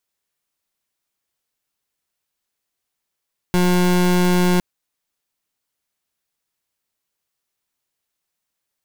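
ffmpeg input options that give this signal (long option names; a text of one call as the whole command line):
ffmpeg -f lavfi -i "aevalsrc='0.168*(2*lt(mod(179*t,1),0.29)-1)':duration=1.06:sample_rate=44100" out.wav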